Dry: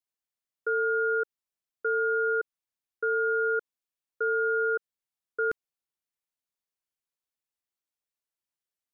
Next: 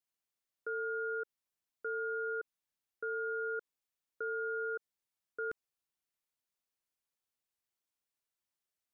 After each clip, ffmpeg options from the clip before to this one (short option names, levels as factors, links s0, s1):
-af "alimiter=level_in=2.24:limit=0.0631:level=0:latency=1:release=47,volume=0.447"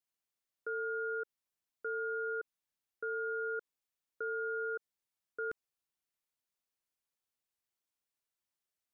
-af anull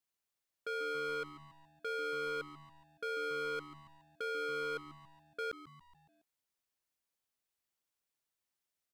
-filter_complex "[0:a]aeval=exprs='0.02*(abs(mod(val(0)/0.02+3,4)-2)-1)':c=same,asplit=6[s0][s1][s2][s3][s4][s5];[s1]adelay=140,afreqshift=-150,volume=0.188[s6];[s2]adelay=280,afreqshift=-300,volume=0.104[s7];[s3]adelay=420,afreqshift=-450,volume=0.0569[s8];[s4]adelay=560,afreqshift=-600,volume=0.0313[s9];[s5]adelay=700,afreqshift=-750,volume=0.0172[s10];[s0][s6][s7][s8][s9][s10]amix=inputs=6:normalize=0,volume=1.12"